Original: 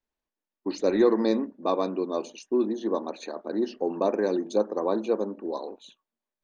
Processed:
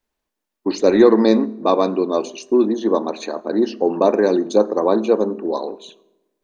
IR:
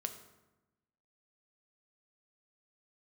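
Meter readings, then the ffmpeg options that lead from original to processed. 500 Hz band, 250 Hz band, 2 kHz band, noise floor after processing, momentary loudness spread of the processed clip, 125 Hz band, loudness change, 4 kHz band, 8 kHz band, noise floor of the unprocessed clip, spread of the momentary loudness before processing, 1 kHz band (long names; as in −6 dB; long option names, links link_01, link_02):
+9.5 dB, +9.5 dB, +9.5 dB, −81 dBFS, 13 LU, +10.0 dB, +9.5 dB, +9.5 dB, can't be measured, below −85 dBFS, 13 LU, +9.5 dB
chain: -filter_complex "[0:a]asplit=2[link_01][link_02];[1:a]atrim=start_sample=2205[link_03];[link_02][link_03]afir=irnorm=-1:irlink=0,volume=-8dB[link_04];[link_01][link_04]amix=inputs=2:normalize=0,volume=7dB"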